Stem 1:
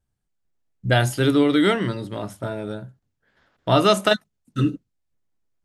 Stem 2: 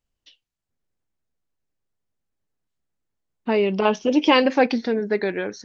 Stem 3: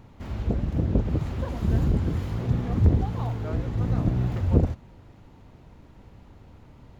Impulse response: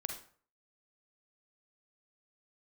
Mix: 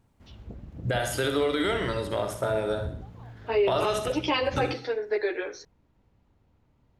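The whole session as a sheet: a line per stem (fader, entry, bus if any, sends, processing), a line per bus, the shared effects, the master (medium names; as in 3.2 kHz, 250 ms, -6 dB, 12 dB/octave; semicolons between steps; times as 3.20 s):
+1.0 dB, 0.00 s, send -4.5 dB, echo send -5.5 dB, resonant low shelf 360 Hz -8 dB, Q 1.5; compression 4:1, threshold -28 dBFS, peak gain reduction 14.5 dB; endings held to a fixed fall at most 280 dB/s
-4.0 dB, 0.00 s, send -7 dB, no echo send, steep high-pass 310 Hz 48 dB/octave; three-phase chorus
-16.5 dB, 0.00 s, no send, no echo send, none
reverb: on, RT60 0.50 s, pre-delay 38 ms
echo: feedback delay 64 ms, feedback 44%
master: peak limiter -16 dBFS, peak gain reduction 10 dB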